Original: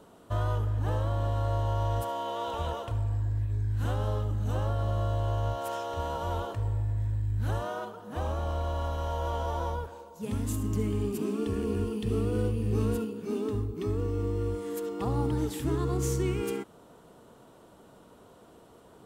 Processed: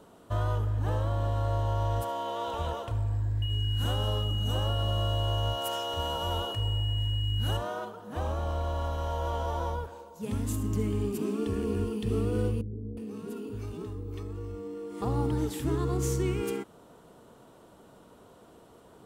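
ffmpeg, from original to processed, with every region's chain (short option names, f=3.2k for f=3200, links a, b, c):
-filter_complex "[0:a]asettb=1/sr,asplit=3[a][b][c];[a]atrim=end=3.424[d];[b]atrim=start=3.42:end=7.57,asetpts=PTS-STARTPTS,afade=t=in:d=0.004:c=qsin,afade=t=out:st=4.146:d=0.004:c=qsin,highshelf=f=7.1k:g=10,aeval=exprs='val(0)+0.0158*sin(2*PI*2900*n/s)':c=same[e];[c]atrim=start=7.566[f];[d][e]acrossfade=d=0.004:c1=hsin:c2=qsin[g];[g][f]acrossfade=d=0.004:c1=qsin:c2=hsin,asettb=1/sr,asplit=3[h][i][j];[h]atrim=end=12.614[k];[i]atrim=start=12.61:end=15.02,asetpts=PTS-STARTPTS,afade=t=in:d=0.004:c=qsin,afade=t=out:st=2.406:d=0.004:c=qsin,acompressor=threshold=-32dB:ratio=12:attack=3.2:release=140:knee=1:detection=peak,acrossover=split=470[l][m];[m]adelay=360[n];[l][n]amix=inputs=2:normalize=0,atrim=end_sample=106281[o];[j]atrim=start=15.016[p];[k][o]acrossfade=d=0.004:c1=hsin:c2=qsin[q];[q][p]acrossfade=d=0.004:c1=qsin:c2=hsin"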